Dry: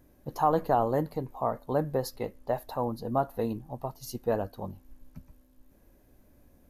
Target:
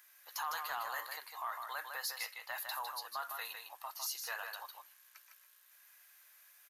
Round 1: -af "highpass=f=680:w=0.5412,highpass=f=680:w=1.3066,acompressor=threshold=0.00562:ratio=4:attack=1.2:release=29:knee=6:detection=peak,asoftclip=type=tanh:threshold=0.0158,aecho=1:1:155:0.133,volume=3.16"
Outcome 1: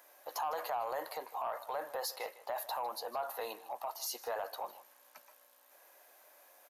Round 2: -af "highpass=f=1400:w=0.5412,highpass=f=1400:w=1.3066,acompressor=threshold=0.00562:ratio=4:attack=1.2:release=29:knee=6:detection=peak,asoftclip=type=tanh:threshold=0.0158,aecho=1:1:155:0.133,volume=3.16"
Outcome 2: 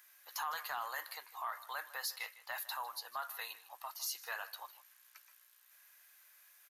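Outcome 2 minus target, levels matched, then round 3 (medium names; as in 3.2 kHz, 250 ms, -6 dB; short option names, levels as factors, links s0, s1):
echo-to-direct -12 dB
-af "highpass=f=1400:w=0.5412,highpass=f=1400:w=1.3066,acompressor=threshold=0.00562:ratio=4:attack=1.2:release=29:knee=6:detection=peak,asoftclip=type=tanh:threshold=0.0158,aecho=1:1:155:0.531,volume=3.16"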